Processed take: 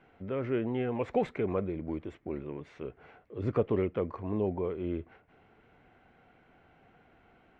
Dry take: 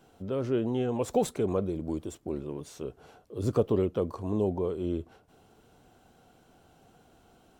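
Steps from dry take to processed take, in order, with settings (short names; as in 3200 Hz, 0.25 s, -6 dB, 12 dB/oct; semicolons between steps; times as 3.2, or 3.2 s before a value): synth low-pass 2100 Hz, resonance Q 4.2; gain -3 dB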